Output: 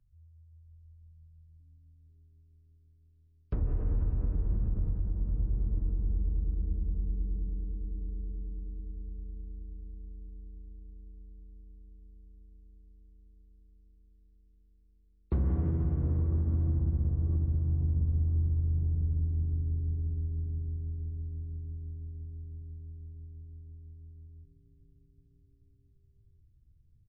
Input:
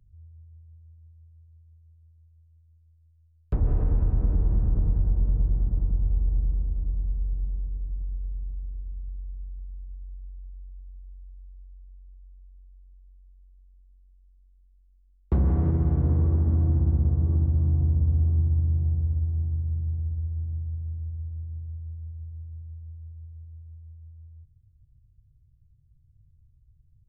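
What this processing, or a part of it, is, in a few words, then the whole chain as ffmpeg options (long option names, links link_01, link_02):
low-bitrate web radio: -filter_complex "[0:a]equalizer=frequency=780:width=2.1:gain=-5,bandreject=frequency=50:width_type=h:width=6,bandreject=frequency=100:width_type=h:width=6,bandreject=frequency=150:width_type=h:width=6,bandreject=frequency=200:width_type=h:width=6,asplit=5[link_01][link_02][link_03][link_04][link_05];[link_02]adelay=487,afreqshift=-120,volume=-15.5dB[link_06];[link_03]adelay=974,afreqshift=-240,volume=-22.4dB[link_07];[link_04]adelay=1461,afreqshift=-360,volume=-29.4dB[link_08];[link_05]adelay=1948,afreqshift=-480,volume=-36.3dB[link_09];[link_01][link_06][link_07][link_08][link_09]amix=inputs=5:normalize=0,dynaudnorm=framelen=120:gausssize=11:maxgain=5dB,alimiter=limit=-13.5dB:level=0:latency=1:release=219,volume=-8dB" -ar 22050 -c:a libmp3lame -b:a 24k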